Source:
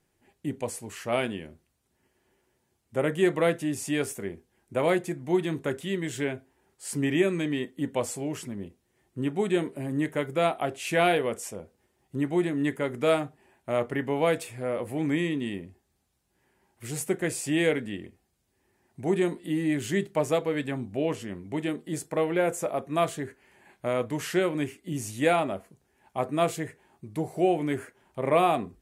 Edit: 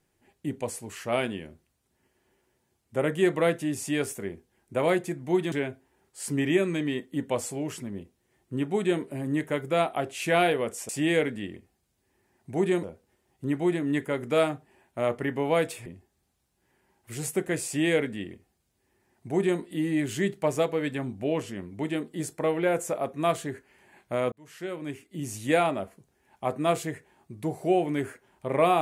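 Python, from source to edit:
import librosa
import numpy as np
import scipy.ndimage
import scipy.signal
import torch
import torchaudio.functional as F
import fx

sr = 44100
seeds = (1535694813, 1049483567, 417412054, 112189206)

y = fx.edit(x, sr, fx.cut(start_s=5.52, length_s=0.65),
    fx.cut(start_s=14.57, length_s=1.02),
    fx.duplicate(start_s=17.39, length_s=1.94, to_s=11.54),
    fx.fade_in_span(start_s=24.05, length_s=1.14), tone=tone)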